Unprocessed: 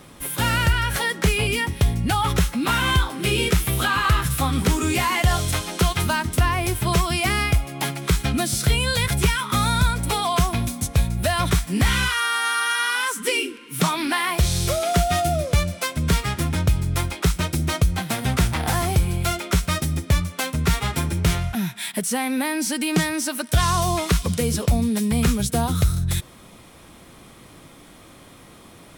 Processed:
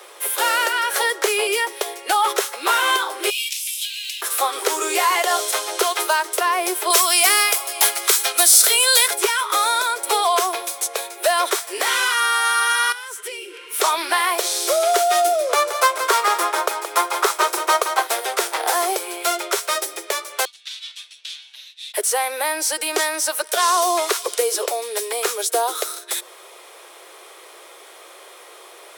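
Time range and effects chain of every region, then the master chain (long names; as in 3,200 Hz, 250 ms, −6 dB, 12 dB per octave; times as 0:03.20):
0:03.30–0:04.22: elliptic high-pass filter 2,500 Hz, stop band 50 dB + linearly interpolated sample-rate reduction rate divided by 2×
0:06.90–0:09.08: spectral tilt +3 dB per octave + single-tap delay 575 ms −17.5 dB
0:12.92–0:13.64: hollow resonant body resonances 220/3,200 Hz, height 7 dB + downward compressor 16 to 1, threshold −32 dBFS + notch filter 1,100 Hz, Q 6.4
0:15.49–0:18.07: parametric band 1,100 Hz +10.5 dB 1.1 octaves + single-tap delay 173 ms −8.5 dB
0:20.45–0:21.94: lower of the sound and its delayed copy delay 6.7 ms + four-pole ladder band-pass 3,800 Hz, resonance 55% + frequency shifter +150 Hz
whole clip: Butterworth high-pass 370 Hz 72 dB per octave; dynamic equaliser 2,500 Hz, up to −5 dB, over −38 dBFS, Q 1.1; level +6 dB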